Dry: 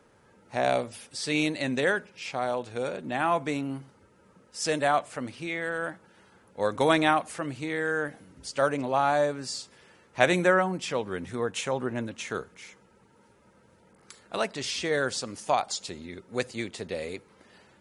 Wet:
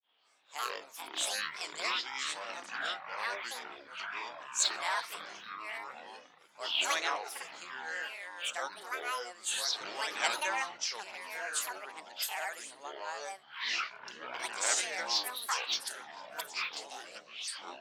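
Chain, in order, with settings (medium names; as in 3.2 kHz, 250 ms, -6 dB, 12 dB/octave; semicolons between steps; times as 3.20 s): resonant low-pass 6 kHz, resonance Q 8; ever faster or slower copies 221 ms, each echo -6 st, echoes 3; granulator 237 ms, grains 14 per s, spray 27 ms, pitch spread up and down by 12 st; high-pass 990 Hz 12 dB/octave; trim -4.5 dB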